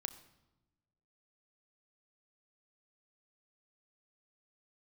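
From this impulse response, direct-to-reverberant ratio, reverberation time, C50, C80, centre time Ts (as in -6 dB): 8.5 dB, 1.0 s, 14.0 dB, 15.0 dB, 9 ms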